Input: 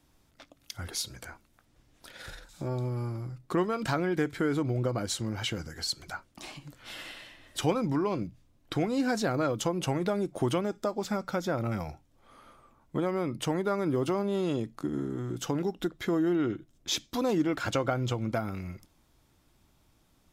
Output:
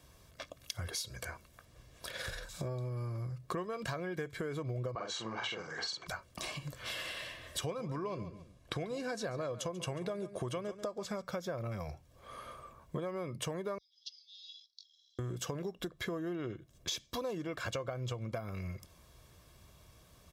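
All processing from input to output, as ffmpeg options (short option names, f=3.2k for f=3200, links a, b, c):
-filter_complex "[0:a]asettb=1/sr,asplit=3[a][b][c];[a]atrim=end=4.954[d];[b]atrim=start=4.95:end=6.07,asetpts=PTS-STARTPTS,afade=t=in:d=0.004:c=qsin,afade=t=out:st=1.116:d=0.004:c=qsin,highpass=310,equalizer=f=550:t=q:w=4:g=-6,equalizer=f=850:t=q:w=4:g=9,equalizer=f=1.2k:t=q:w=4:g=5,equalizer=f=5k:t=q:w=4:g=-7,lowpass=f=5.8k:w=0.5412,lowpass=f=5.8k:w=1.3066,asplit=2[e][f];[f]adelay=45,volume=-2.5dB[g];[e][g]amix=inputs=2:normalize=0,atrim=end_sample=49392[h];[c]atrim=start=6.066[i];[d][h]acrossfade=d=0.004:c1=hsin:c2=qsin[j];[j][i]acrossfade=d=0.004:c1=qsin:c2=hsin,asettb=1/sr,asplit=3[k][l][m];[k]atrim=end=7.634[n];[l]atrim=start=7.63:end=11.22,asetpts=PTS-STARTPTS,afade=t=in:d=0.004:c=qsin,afade=t=out:st=3.586:d=0.004:c=qsin,lowpass=f=12k:w=0.5412,lowpass=f=12k:w=1.3066,aecho=1:1:139|278:0.158|0.0285,atrim=end_sample=158319[o];[m]atrim=start=11.216[p];[n][o]acrossfade=d=0.004:c1=hsin:c2=qsin[q];[q][p]acrossfade=d=0.004:c1=qsin:c2=hsin,asettb=1/sr,asplit=3[r][s][t];[r]atrim=end=13.784[u];[s]atrim=start=13.78:end=15.19,asetpts=PTS-STARTPTS,afade=t=in:d=0.004:c=qsin,afade=t=out:st=1.406:d=0.004:c=qsin,acompressor=threshold=-31dB:ratio=4:attack=3.2:release=140:knee=1:detection=peak,asuperpass=centerf=4500:order=8:qfactor=2[v];[t]atrim=start=15.186[w];[u][v]acrossfade=d=0.004:c1=hsin:c2=qsin[x];[x][w]acrossfade=d=0.004:c1=qsin:c2=hsin,highpass=43,aecho=1:1:1.8:0.58,acompressor=threshold=-43dB:ratio=5,volume=5.5dB"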